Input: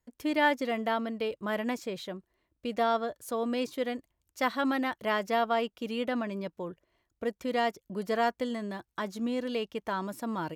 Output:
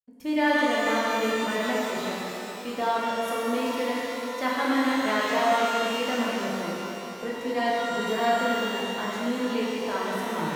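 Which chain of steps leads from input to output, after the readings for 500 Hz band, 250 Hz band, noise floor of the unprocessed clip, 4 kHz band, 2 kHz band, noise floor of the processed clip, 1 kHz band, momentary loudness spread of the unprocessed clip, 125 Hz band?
+4.5 dB, +5.0 dB, -82 dBFS, +8.0 dB, +6.5 dB, -36 dBFS, +5.5 dB, 10 LU, +3.5 dB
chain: expander -46 dBFS; shimmer reverb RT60 3.1 s, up +12 st, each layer -8 dB, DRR -6.5 dB; gain -2.5 dB

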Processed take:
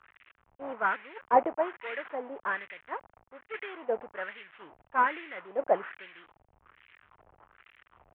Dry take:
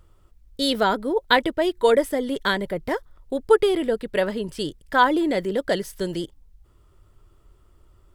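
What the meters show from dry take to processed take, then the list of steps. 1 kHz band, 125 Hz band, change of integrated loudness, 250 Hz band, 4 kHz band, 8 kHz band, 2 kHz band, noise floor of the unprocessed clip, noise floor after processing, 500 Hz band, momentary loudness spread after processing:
-5.5 dB, under -20 dB, -9.0 dB, -19.0 dB, -24.0 dB, under -40 dB, -8.0 dB, -57 dBFS, -71 dBFS, -12.0 dB, 17 LU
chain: delta modulation 16 kbps, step -27 dBFS; wah 1.2 Hz 720–2100 Hz, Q 2.7; three-band expander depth 100%; gain -1.5 dB

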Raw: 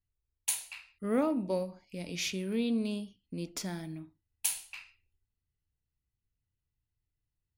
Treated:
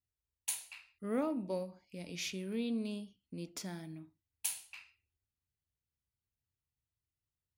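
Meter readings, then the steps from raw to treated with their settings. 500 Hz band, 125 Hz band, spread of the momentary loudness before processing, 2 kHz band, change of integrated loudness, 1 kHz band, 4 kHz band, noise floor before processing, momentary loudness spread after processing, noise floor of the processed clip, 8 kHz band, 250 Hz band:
-5.5 dB, -5.5 dB, 15 LU, -5.5 dB, -5.5 dB, -5.5 dB, -5.5 dB, under -85 dBFS, 15 LU, under -85 dBFS, -5.5 dB, -5.5 dB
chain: HPF 56 Hz; gain -5.5 dB

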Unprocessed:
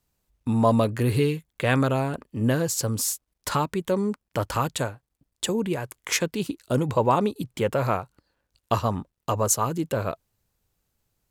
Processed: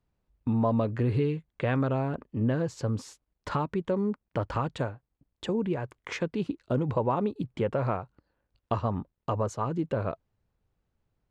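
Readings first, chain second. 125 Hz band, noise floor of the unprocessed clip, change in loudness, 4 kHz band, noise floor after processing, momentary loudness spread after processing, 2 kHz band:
-3.0 dB, -80 dBFS, -4.5 dB, -12.5 dB, -83 dBFS, 9 LU, -8.0 dB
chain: compressor 2:1, threshold -24 dBFS, peak gain reduction 5.5 dB; tape spacing loss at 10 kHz 29 dB

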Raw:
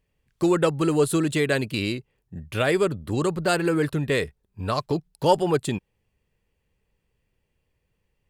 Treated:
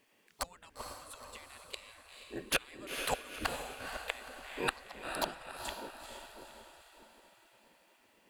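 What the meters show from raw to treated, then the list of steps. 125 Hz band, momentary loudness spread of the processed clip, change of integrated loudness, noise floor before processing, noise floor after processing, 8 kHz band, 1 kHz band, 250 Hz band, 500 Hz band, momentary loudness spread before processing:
-26.5 dB, 18 LU, -16.0 dB, -76 dBFS, -68 dBFS, -7.5 dB, -12.0 dB, -24.0 dB, -20.5 dB, 12 LU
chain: flipped gate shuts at -17 dBFS, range -36 dB; diffused feedback echo 0.471 s, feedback 49%, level -6 dB; spectral gate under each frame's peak -15 dB weak; gain +11 dB

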